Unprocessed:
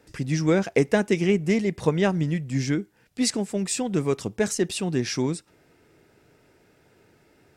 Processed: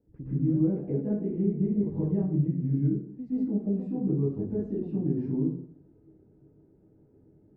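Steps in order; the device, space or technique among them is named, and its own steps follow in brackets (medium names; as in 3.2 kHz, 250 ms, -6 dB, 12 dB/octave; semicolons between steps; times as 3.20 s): television next door (compression 4:1, threshold -26 dBFS, peak gain reduction 10 dB; low-pass 320 Hz 12 dB/octave; reverberation RT60 0.60 s, pre-delay 113 ms, DRR -10.5 dB); trim -8.5 dB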